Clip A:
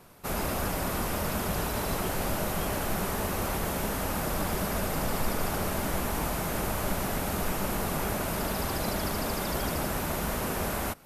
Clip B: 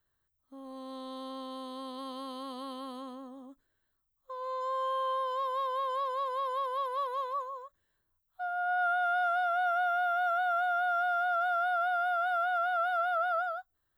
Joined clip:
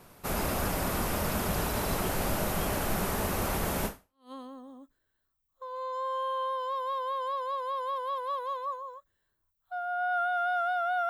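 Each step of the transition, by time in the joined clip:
clip A
4.09 switch to clip B from 2.77 s, crossfade 0.46 s exponential

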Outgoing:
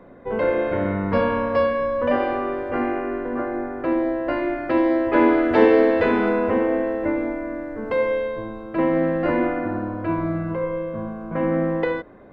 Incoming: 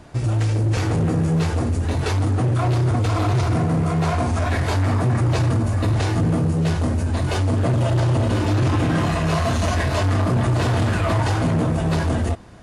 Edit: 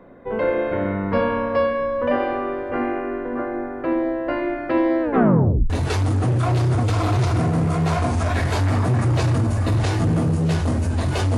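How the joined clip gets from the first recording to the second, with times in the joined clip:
outgoing
5.02 tape stop 0.68 s
5.7 switch to incoming from 1.86 s

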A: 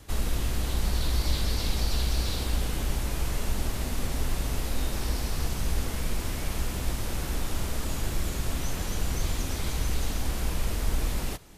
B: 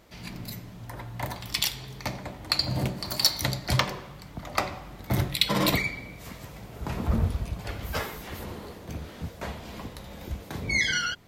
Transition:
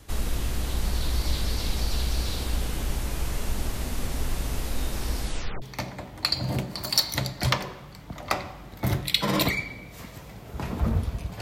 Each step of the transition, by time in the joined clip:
A
5.2 tape stop 0.42 s
5.62 switch to B from 1.89 s

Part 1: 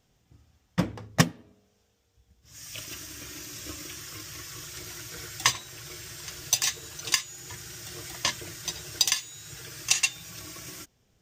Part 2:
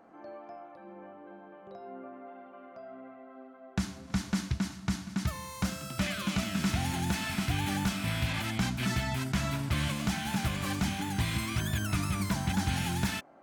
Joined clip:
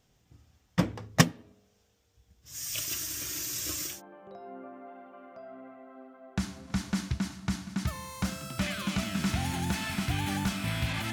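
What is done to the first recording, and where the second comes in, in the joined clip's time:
part 1
2.46–4.02 high shelf 5200 Hz +11 dB
3.93 switch to part 2 from 1.33 s, crossfade 0.18 s

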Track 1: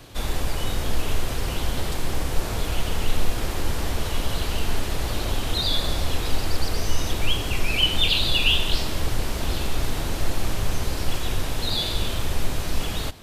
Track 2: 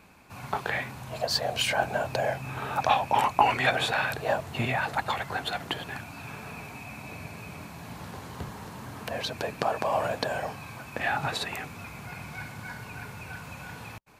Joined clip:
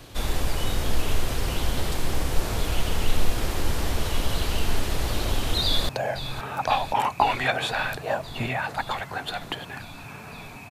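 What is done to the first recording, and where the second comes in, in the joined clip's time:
track 1
5.63–5.89 echo throw 0.52 s, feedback 80%, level -11.5 dB
5.89 switch to track 2 from 2.08 s

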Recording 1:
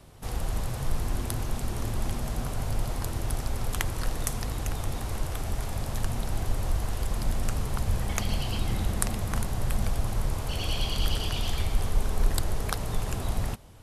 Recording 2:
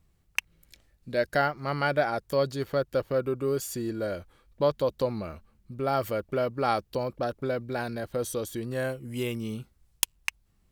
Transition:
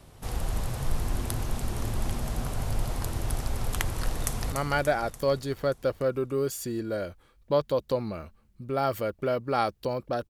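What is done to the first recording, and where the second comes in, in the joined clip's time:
recording 1
4.14–4.52 echo throw 0.29 s, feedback 60%, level -7 dB
4.52 switch to recording 2 from 1.62 s

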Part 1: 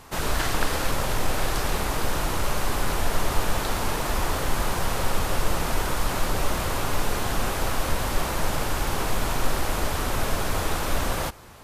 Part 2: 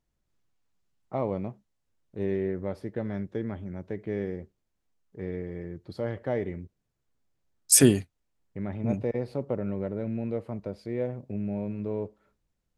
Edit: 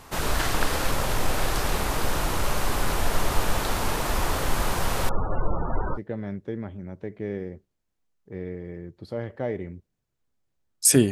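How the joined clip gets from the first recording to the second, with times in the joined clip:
part 1
5.09–5.99 loudest bins only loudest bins 32
5.96 switch to part 2 from 2.83 s, crossfade 0.06 s

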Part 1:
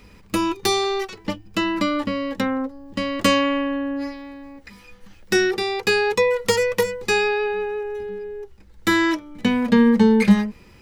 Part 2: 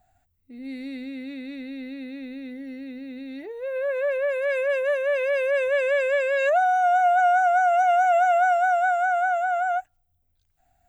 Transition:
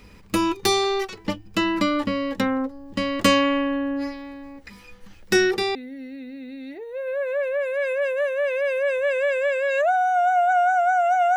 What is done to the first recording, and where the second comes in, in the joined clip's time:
part 1
5.75 switch to part 2 from 2.43 s

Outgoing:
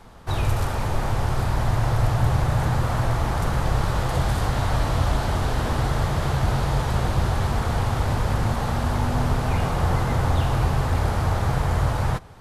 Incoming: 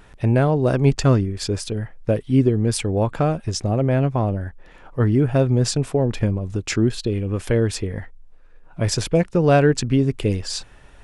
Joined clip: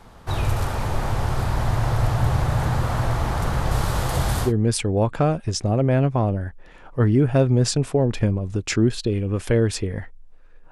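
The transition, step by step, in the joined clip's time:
outgoing
3.71–4.53 high shelf 6400 Hz +9.5 dB
4.47 switch to incoming from 2.47 s, crossfade 0.12 s

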